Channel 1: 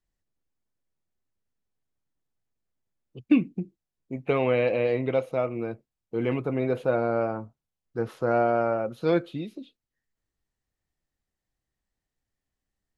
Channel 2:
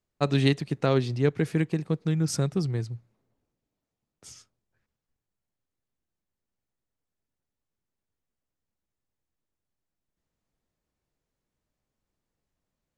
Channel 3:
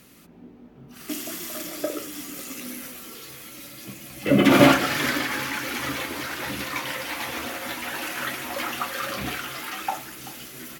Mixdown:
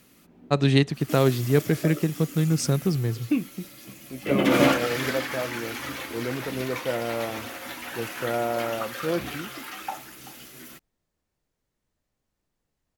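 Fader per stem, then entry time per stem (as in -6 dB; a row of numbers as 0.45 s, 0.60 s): -4.0 dB, +3.0 dB, -5.0 dB; 0.00 s, 0.30 s, 0.00 s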